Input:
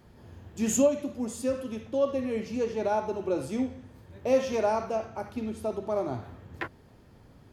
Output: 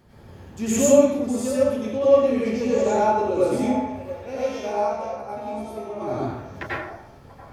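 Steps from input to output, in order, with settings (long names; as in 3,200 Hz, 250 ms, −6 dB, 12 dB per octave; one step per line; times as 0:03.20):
0:04.16–0:06.02: tuned comb filter 69 Hz, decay 0.33 s, harmonics all, mix 90%
on a send: echo through a band-pass that steps 684 ms, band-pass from 740 Hz, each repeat 1.4 octaves, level −9 dB
on the sum: dense smooth reverb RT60 0.69 s, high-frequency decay 0.65×, pre-delay 80 ms, DRR −7.5 dB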